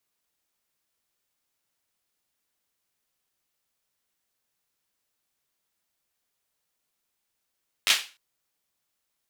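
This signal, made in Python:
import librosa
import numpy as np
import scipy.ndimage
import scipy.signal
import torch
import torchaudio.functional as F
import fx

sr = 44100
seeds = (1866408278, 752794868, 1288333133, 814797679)

y = fx.drum_clap(sr, seeds[0], length_s=0.3, bursts=4, spacing_ms=10, hz=2800.0, decay_s=0.32)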